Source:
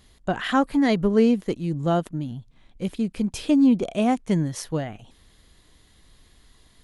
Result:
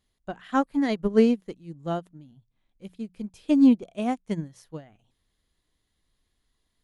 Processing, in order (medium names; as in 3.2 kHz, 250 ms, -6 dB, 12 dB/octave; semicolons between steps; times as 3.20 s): hum notches 60/120/180 Hz; upward expansion 2.5:1, over -28 dBFS; trim +1.5 dB